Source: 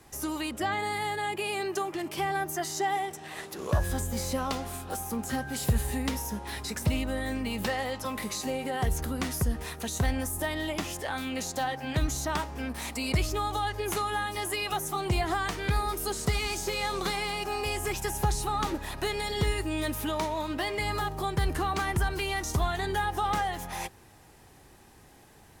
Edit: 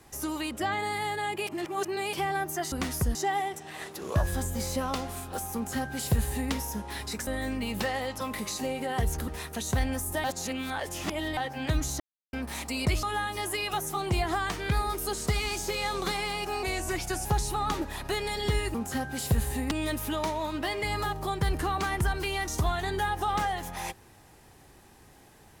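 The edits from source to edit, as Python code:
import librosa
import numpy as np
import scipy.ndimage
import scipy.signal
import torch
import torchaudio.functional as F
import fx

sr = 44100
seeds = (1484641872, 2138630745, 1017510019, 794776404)

y = fx.edit(x, sr, fx.reverse_span(start_s=1.47, length_s=0.66),
    fx.duplicate(start_s=5.12, length_s=0.97, to_s=19.67),
    fx.cut(start_s=6.84, length_s=0.27),
    fx.move(start_s=9.12, length_s=0.43, to_s=2.72),
    fx.reverse_span(start_s=10.51, length_s=1.13),
    fx.silence(start_s=12.27, length_s=0.33),
    fx.cut(start_s=13.3, length_s=0.72),
    fx.speed_span(start_s=17.62, length_s=0.56, speed=0.9), tone=tone)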